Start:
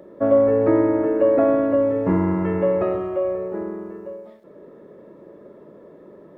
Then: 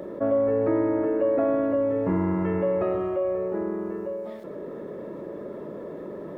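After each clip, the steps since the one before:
envelope flattener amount 50%
level −8 dB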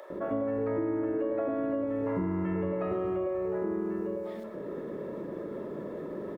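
multiband delay without the direct sound highs, lows 100 ms, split 640 Hz
downward compressor, threshold −27 dBFS, peak gain reduction 7.5 dB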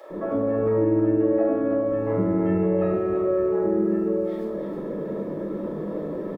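single-tap delay 319 ms −7 dB
convolution reverb RT60 0.60 s, pre-delay 6 ms, DRR −6 dB
level −4.5 dB

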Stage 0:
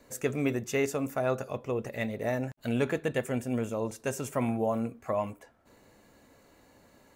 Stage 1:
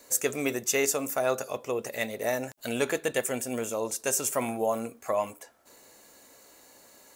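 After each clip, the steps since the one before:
bass and treble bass −13 dB, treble +12 dB
level +3 dB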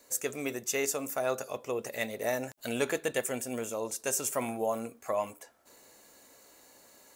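speech leveller 2 s
level −4 dB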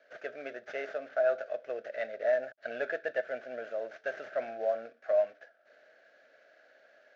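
variable-slope delta modulation 32 kbit/s
pair of resonant band-passes 990 Hz, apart 1.3 octaves
level +7 dB

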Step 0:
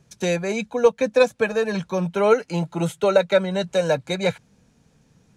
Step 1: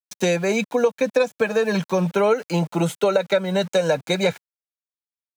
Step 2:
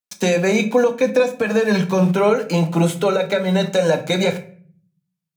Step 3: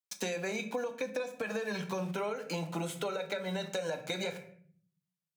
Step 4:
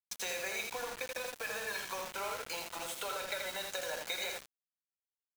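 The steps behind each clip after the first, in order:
centre clipping without the shift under −42 dBFS; high-pass filter 140 Hz 12 dB per octave; downward compressor 6 to 1, threshold −21 dBFS, peak gain reduction 11 dB; level +5.5 dB
brickwall limiter −12.5 dBFS, peak gain reduction 7 dB; tape wow and flutter 20 cents; on a send at −6 dB: convolution reverb RT60 0.45 s, pre-delay 4 ms; on the sum: level +3.5 dB
low-shelf EQ 430 Hz −8.5 dB; downward compressor, threshold −26 dBFS, peak gain reduction 11.5 dB; level −6.5 dB
high-pass filter 780 Hz 12 dB per octave; repeating echo 82 ms, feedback 30%, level −5 dB; bit reduction 7 bits

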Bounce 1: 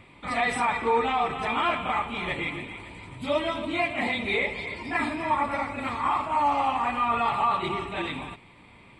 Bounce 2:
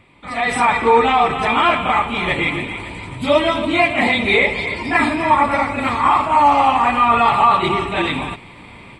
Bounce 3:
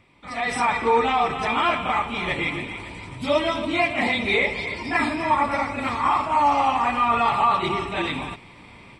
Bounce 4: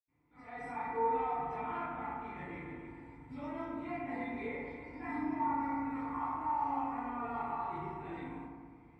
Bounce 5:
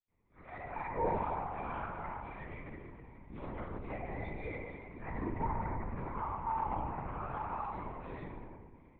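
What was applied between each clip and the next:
automatic gain control gain up to 13 dB
parametric band 5,500 Hz +11.5 dB 0.29 octaves; level −6.5 dB
convolution reverb RT60 1.6 s, pre-delay 77 ms
linear-prediction vocoder at 8 kHz whisper; level −1 dB

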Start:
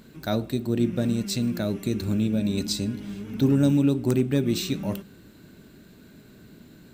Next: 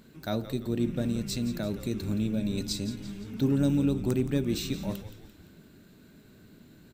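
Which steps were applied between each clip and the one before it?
echo with shifted repeats 171 ms, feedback 50%, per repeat −91 Hz, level −13 dB
level −5 dB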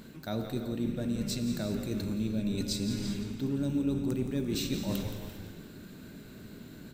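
reversed playback
downward compressor, threshold −36 dBFS, peak gain reduction 14 dB
reversed playback
reverb whose tail is shaped and stops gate 430 ms flat, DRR 6.5 dB
level +6 dB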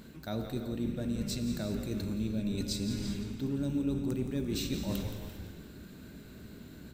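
parametric band 64 Hz +12 dB 0.43 octaves
level −2 dB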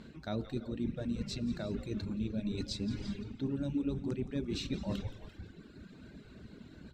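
reverb reduction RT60 1.2 s
low-pass filter 4,800 Hz 12 dB per octave

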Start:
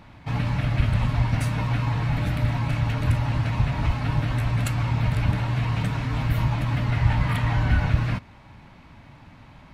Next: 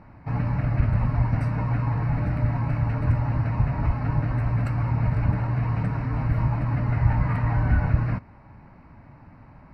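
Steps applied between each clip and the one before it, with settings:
moving average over 13 samples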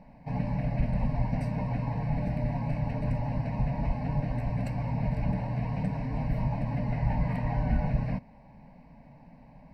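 phaser with its sweep stopped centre 350 Hz, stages 6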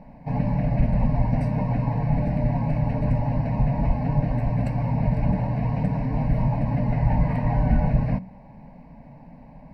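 high-shelf EQ 2,000 Hz −8 dB
hum removal 62.15 Hz, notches 3
level +7.5 dB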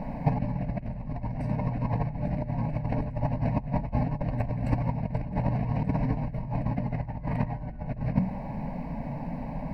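soft clipping −9.5 dBFS, distortion −24 dB
compressor whose output falls as the input rises −29 dBFS, ratio −0.5
level +2.5 dB

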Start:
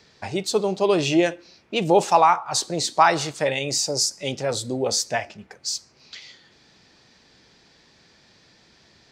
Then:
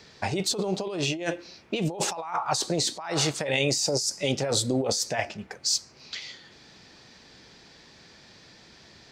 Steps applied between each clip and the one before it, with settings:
compressor whose output falls as the input rises −27 dBFS, ratio −1
level −1 dB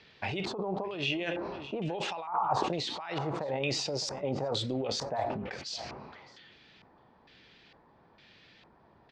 auto-filter low-pass square 1.1 Hz 980–3,000 Hz
single-tap delay 614 ms −24 dB
level that may fall only so fast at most 32 dB per second
level −8 dB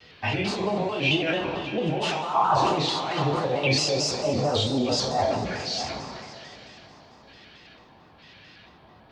coupled-rooms reverb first 0.36 s, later 3.7 s, from −18 dB, DRR −8 dB
pitch modulation by a square or saw wave square 4.5 Hz, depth 100 cents

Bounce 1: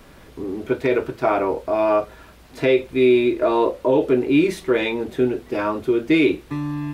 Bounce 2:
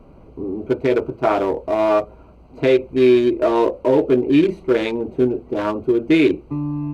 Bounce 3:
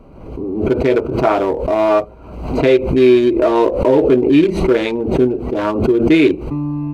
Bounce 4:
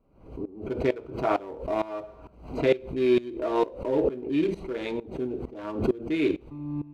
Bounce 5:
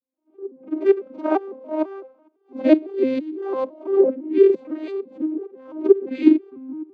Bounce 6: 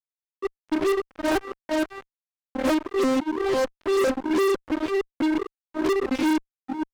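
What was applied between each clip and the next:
adaptive Wiener filter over 25 samples; level +2.5 dB
background raised ahead of every attack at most 61 dB per second; level +3 dB
on a send at −13 dB: convolution reverb, pre-delay 3 ms; on the sum: tremolo with a ramp in dB swelling 2.2 Hz, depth 19 dB; level −8 dB
vocoder with an arpeggio as carrier minor triad, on C4, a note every 168 ms; echo ahead of the sound 44 ms −12.5 dB; multiband upward and downward expander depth 70%; level +6 dB
fuzz pedal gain 30 dB, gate −32 dBFS; level −6 dB

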